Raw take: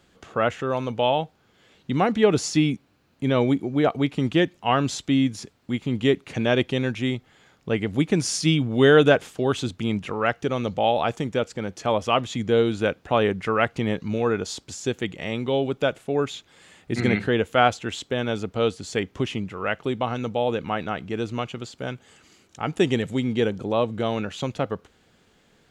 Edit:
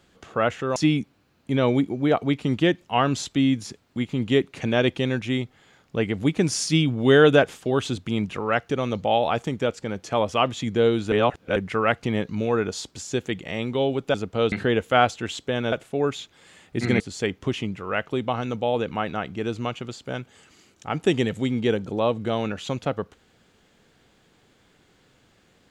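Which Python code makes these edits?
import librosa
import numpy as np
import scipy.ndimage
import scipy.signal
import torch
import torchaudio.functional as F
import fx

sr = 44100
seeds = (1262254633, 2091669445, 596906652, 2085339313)

y = fx.edit(x, sr, fx.cut(start_s=0.76, length_s=1.73),
    fx.reverse_span(start_s=12.85, length_s=0.44),
    fx.swap(start_s=15.87, length_s=1.28, other_s=18.35, other_length_s=0.38), tone=tone)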